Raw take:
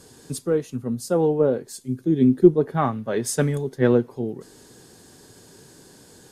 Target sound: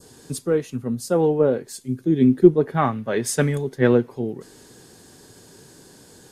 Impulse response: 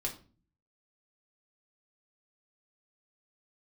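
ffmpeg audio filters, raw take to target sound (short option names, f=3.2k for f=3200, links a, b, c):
-af "adynamicequalizer=threshold=0.00794:dfrequency=2200:dqfactor=1.2:tfrequency=2200:tqfactor=1.2:attack=5:release=100:ratio=0.375:range=2.5:mode=boostabove:tftype=bell,volume=1dB"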